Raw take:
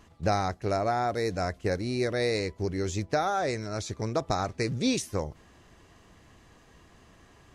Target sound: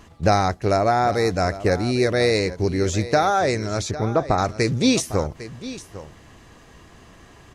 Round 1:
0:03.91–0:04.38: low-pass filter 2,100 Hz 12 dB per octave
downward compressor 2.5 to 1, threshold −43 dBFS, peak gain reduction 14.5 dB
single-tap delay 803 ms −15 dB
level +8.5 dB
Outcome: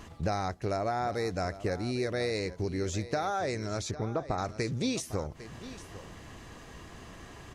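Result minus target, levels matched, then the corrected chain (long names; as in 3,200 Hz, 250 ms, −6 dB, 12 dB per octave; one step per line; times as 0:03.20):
downward compressor: peak gain reduction +14.5 dB
0:03.91–0:04.38: low-pass filter 2,100 Hz 12 dB per octave
single-tap delay 803 ms −15 dB
level +8.5 dB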